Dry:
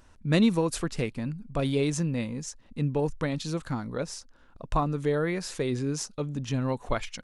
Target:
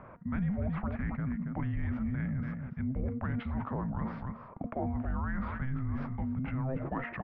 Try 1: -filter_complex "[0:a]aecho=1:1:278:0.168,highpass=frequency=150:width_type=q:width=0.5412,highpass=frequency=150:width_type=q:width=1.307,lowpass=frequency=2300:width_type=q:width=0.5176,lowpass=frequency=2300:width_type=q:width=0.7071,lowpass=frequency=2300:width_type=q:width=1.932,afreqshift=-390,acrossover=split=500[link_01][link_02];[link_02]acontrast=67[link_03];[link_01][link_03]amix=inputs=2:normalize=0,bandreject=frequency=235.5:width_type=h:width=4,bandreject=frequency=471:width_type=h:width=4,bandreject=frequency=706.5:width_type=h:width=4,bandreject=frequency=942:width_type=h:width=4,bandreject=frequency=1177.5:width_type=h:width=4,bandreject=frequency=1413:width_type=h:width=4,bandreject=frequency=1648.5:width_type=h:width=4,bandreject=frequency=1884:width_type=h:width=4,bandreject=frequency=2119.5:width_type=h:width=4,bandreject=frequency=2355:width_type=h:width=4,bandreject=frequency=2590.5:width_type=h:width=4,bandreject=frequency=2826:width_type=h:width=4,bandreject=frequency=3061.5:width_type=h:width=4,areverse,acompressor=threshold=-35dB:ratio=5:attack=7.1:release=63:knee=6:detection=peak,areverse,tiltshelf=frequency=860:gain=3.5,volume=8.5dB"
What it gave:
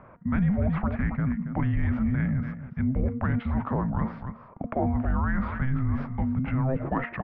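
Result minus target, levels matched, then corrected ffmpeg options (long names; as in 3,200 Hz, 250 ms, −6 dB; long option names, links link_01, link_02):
downward compressor: peak gain reduction −8 dB
-filter_complex "[0:a]aecho=1:1:278:0.168,highpass=frequency=150:width_type=q:width=0.5412,highpass=frequency=150:width_type=q:width=1.307,lowpass=frequency=2300:width_type=q:width=0.5176,lowpass=frequency=2300:width_type=q:width=0.7071,lowpass=frequency=2300:width_type=q:width=1.932,afreqshift=-390,acrossover=split=500[link_01][link_02];[link_02]acontrast=67[link_03];[link_01][link_03]amix=inputs=2:normalize=0,bandreject=frequency=235.5:width_type=h:width=4,bandreject=frequency=471:width_type=h:width=4,bandreject=frequency=706.5:width_type=h:width=4,bandreject=frequency=942:width_type=h:width=4,bandreject=frequency=1177.5:width_type=h:width=4,bandreject=frequency=1413:width_type=h:width=4,bandreject=frequency=1648.5:width_type=h:width=4,bandreject=frequency=1884:width_type=h:width=4,bandreject=frequency=2119.5:width_type=h:width=4,bandreject=frequency=2355:width_type=h:width=4,bandreject=frequency=2590.5:width_type=h:width=4,bandreject=frequency=2826:width_type=h:width=4,bandreject=frequency=3061.5:width_type=h:width=4,areverse,acompressor=threshold=-45dB:ratio=5:attack=7.1:release=63:knee=6:detection=peak,areverse,tiltshelf=frequency=860:gain=3.5,volume=8.5dB"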